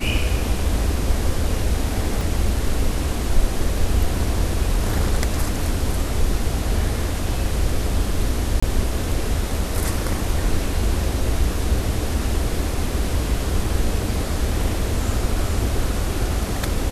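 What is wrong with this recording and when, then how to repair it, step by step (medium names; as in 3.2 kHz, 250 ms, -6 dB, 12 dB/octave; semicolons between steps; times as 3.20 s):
2.21 s: dropout 2.2 ms
8.60–8.62 s: dropout 25 ms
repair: interpolate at 2.21 s, 2.2 ms; interpolate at 8.60 s, 25 ms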